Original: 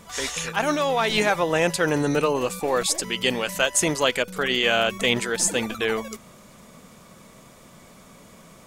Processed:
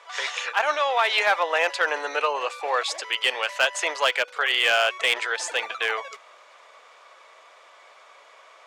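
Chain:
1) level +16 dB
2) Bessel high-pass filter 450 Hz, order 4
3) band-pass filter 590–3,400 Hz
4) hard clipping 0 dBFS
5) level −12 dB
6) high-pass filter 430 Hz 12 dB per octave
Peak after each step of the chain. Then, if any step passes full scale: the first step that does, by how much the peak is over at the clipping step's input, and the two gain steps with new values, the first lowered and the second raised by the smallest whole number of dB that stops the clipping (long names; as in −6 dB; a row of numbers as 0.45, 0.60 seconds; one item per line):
+10.0, +8.5, +8.5, 0.0, −12.0, −8.5 dBFS
step 1, 8.5 dB
step 1 +7 dB, step 5 −3 dB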